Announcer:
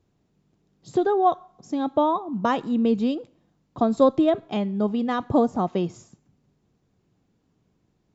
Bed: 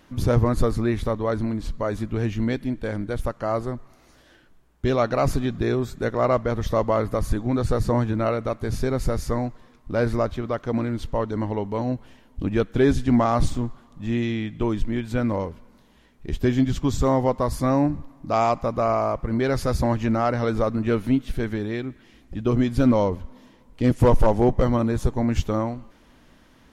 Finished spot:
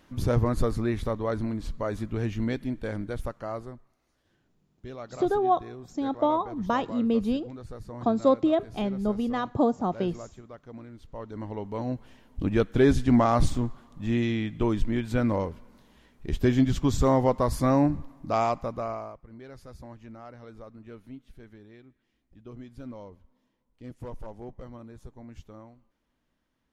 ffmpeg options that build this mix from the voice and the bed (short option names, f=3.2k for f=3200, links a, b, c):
-filter_complex "[0:a]adelay=4250,volume=-3.5dB[a];[1:a]volume=13dB,afade=t=out:st=2.98:d=0.97:silence=0.188365,afade=t=in:st=11.04:d=1.44:silence=0.133352,afade=t=out:st=18.06:d=1.13:silence=0.0841395[b];[a][b]amix=inputs=2:normalize=0"